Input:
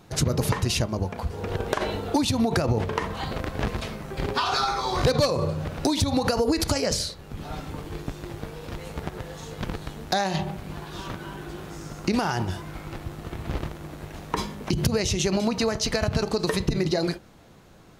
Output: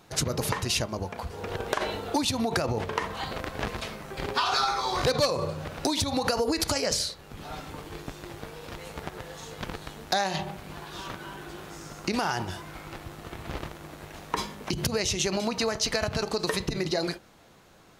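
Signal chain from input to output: low shelf 370 Hz -8.5 dB

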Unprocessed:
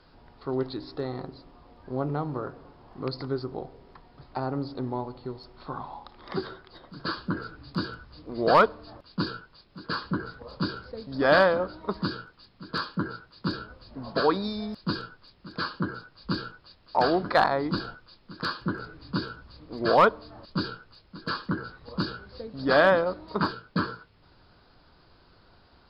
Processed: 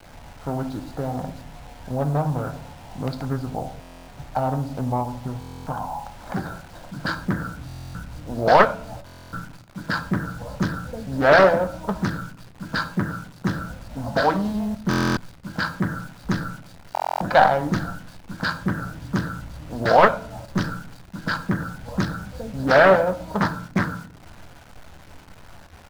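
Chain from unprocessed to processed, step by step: Wiener smoothing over 15 samples; high shelf 4400 Hz -4 dB; comb 1.3 ms, depth 77%; in parallel at -1 dB: compressor, threshold -33 dBFS, peak gain reduction 18.5 dB; on the sum: requantised 8-bit, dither none; on a send at -9 dB: reverb RT60 0.55 s, pre-delay 9 ms; on the sum: stuck buffer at 3.8/5.39/7.67/9.05/14.89/16.93, samples 1024, times 11; Doppler distortion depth 0.48 ms; gain +2 dB

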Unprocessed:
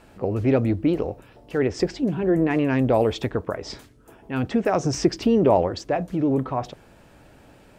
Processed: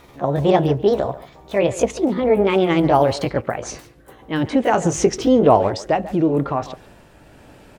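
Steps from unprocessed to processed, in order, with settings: gliding pitch shift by +6 st ending unshifted; speakerphone echo 0.14 s, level -15 dB; gain +5.5 dB

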